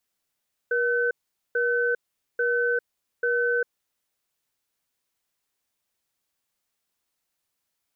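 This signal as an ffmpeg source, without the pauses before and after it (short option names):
-f lavfi -i "aevalsrc='0.0668*(sin(2*PI*478*t)+sin(2*PI*1520*t))*clip(min(mod(t,0.84),0.4-mod(t,0.84))/0.005,0,1)':d=3.04:s=44100"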